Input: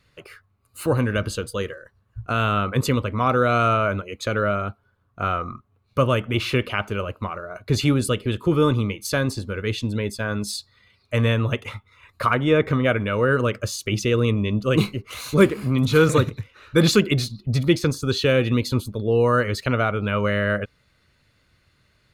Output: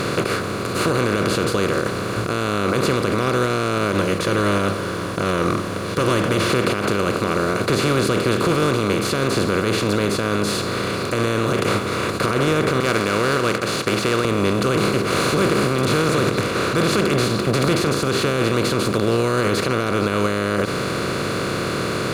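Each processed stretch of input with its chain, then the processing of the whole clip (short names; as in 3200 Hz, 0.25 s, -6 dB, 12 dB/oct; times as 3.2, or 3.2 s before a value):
3.92–6.5 ripple EQ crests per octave 1.2, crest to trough 12 dB + cascading flanger falling 1.8 Hz
12.8–14.25 band-pass 2200 Hz, Q 1.4 + sample leveller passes 1
whole clip: per-bin compression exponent 0.2; limiter -2.5 dBFS; gain -6 dB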